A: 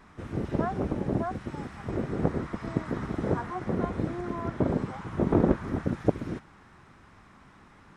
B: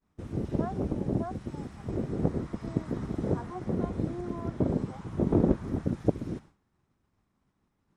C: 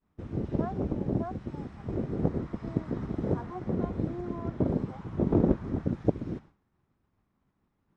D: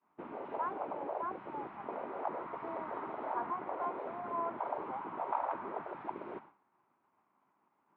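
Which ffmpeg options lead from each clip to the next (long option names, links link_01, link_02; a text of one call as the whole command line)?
ffmpeg -i in.wav -af "agate=range=-33dB:threshold=-42dB:ratio=3:detection=peak,equalizer=frequency=1600:width=0.6:gain=-10" out.wav
ffmpeg -i in.wav -af "adynamicsmooth=sensitivity=6.5:basefreq=4400" out.wav
ffmpeg -i in.wav -af "afftfilt=real='re*lt(hypot(re,im),0.1)':imag='im*lt(hypot(re,im),0.1)':win_size=1024:overlap=0.75,highpass=470,equalizer=frequency=490:width_type=q:width=4:gain=-6,equalizer=frequency=950:width_type=q:width=4:gain=7,equalizer=frequency=1800:width_type=q:width=4:gain=-6,lowpass=frequency=2400:width=0.5412,lowpass=frequency=2400:width=1.3066,volume=6dB" out.wav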